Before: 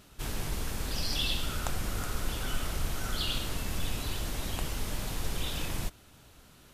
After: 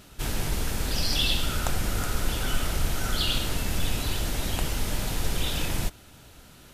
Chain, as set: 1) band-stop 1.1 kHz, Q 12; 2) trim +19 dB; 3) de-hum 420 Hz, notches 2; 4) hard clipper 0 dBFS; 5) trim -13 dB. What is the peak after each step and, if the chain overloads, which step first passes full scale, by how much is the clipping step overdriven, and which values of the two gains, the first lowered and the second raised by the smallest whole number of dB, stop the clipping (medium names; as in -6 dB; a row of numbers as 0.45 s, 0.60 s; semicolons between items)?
-14.5 dBFS, +4.5 dBFS, +4.5 dBFS, 0.0 dBFS, -13.0 dBFS; step 2, 4.5 dB; step 2 +14 dB, step 5 -8 dB